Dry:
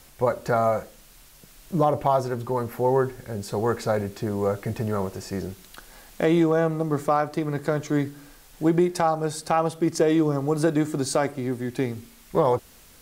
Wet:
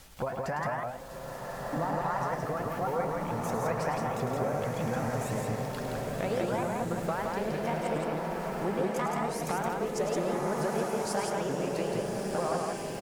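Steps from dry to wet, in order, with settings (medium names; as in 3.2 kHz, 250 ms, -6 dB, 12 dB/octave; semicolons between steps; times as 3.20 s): sawtooth pitch modulation +8 st, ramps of 221 ms; peaking EQ 320 Hz -6 dB 0.35 oct; compression 3:1, threshold -34 dBFS, peak gain reduction 13 dB; treble shelf 11 kHz -7.5 dB; on a send: loudspeakers at several distances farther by 36 m -8 dB, 58 m -3 dB; on the sum: swelling reverb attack 1570 ms, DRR 1.5 dB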